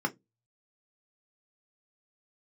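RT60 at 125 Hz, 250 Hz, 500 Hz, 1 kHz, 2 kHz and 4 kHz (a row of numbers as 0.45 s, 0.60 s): 0.35 s, 0.25 s, 0.20 s, 0.10 s, 0.15 s, 0.15 s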